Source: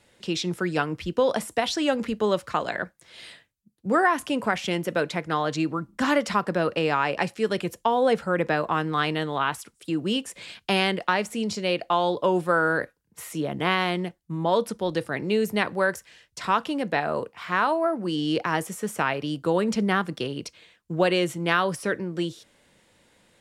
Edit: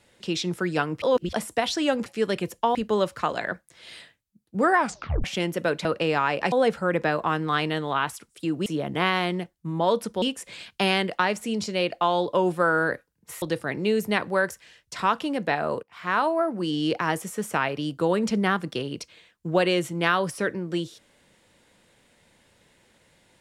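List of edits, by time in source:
0:01.02–0:01.33: reverse
0:04.09: tape stop 0.46 s
0:05.16–0:06.61: remove
0:07.28–0:07.97: move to 0:02.06
0:13.31–0:14.87: move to 0:10.11
0:17.28–0:17.64: fade in, from −16.5 dB

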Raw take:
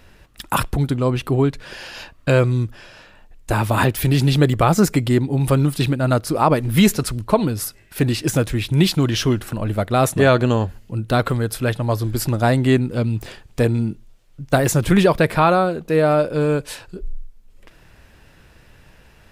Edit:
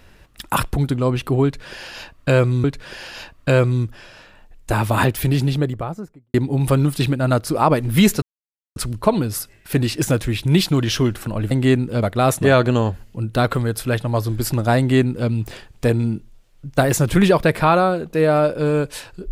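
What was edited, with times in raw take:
0:01.44–0:02.64: repeat, 2 plays
0:03.82–0:05.14: fade out and dull
0:07.02: splice in silence 0.54 s
0:12.53–0:13.04: duplicate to 0:09.77

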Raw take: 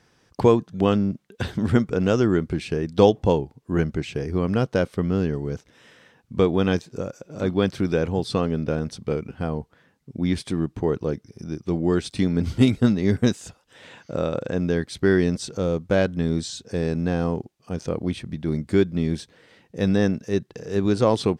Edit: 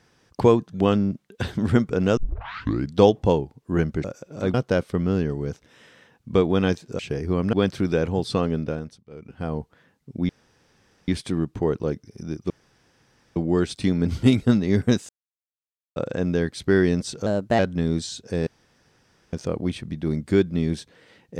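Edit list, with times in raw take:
0:02.17: tape start 0.78 s
0:04.04–0:04.58: swap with 0:07.03–0:07.53
0:08.55–0:09.57: duck −22 dB, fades 0.47 s
0:10.29: splice in room tone 0.79 s
0:11.71: splice in room tone 0.86 s
0:13.44–0:14.31: silence
0:15.61–0:16.00: play speed 119%
0:16.88–0:17.74: fill with room tone

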